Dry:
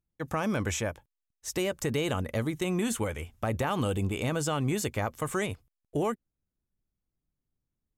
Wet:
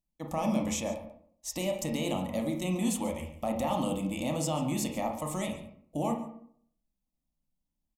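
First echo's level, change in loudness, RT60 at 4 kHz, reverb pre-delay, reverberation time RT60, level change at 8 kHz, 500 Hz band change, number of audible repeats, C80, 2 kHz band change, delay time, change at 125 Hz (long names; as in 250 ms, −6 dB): −16.5 dB, −1.5 dB, 0.40 s, 24 ms, 0.65 s, −0.5 dB, −2.0 dB, 1, 10.0 dB, −7.5 dB, 140 ms, −4.5 dB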